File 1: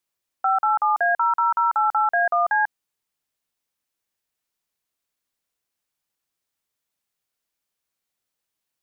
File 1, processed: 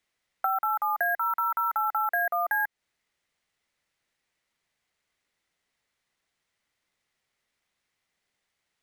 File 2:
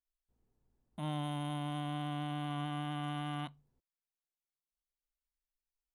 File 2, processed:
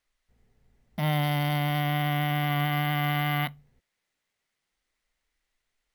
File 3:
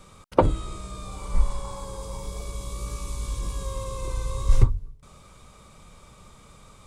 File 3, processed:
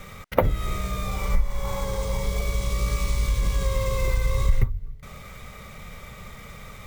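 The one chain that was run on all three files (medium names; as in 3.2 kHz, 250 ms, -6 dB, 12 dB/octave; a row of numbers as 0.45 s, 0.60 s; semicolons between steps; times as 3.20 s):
graphic EQ with 31 bands 315 Hz -11 dB, 1 kHz -7 dB, 2 kHz +12 dB, 5 kHz -10 dB, 8 kHz -7 dB; compression 4:1, threshold -27 dBFS; sample-and-hold 3×; normalise loudness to -27 LUFS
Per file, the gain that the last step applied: +1.5 dB, +13.0 dB, +9.0 dB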